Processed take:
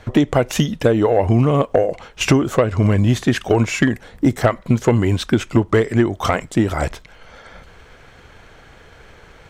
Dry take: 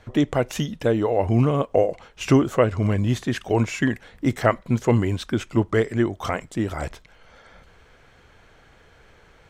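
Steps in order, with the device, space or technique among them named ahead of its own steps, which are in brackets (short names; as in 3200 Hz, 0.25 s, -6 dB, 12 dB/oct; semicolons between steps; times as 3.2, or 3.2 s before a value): drum-bus smash (transient shaper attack +4 dB, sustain 0 dB; compressor 6:1, threshold -17 dBFS, peak gain reduction 8.5 dB; soft clip -11 dBFS, distortion -20 dB); 3.89–4.44 bell 2400 Hz -5.5 dB 1.8 oct; gain +8 dB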